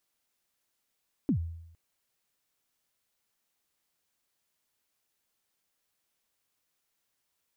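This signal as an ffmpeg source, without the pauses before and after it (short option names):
-f lavfi -i "aevalsrc='0.0891*pow(10,-3*t/0.81)*sin(2*PI*(320*0.091/log(83/320)*(exp(log(83/320)*min(t,0.091)/0.091)-1)+83*max(t-0.091,0)))':d=0.46:s=44100"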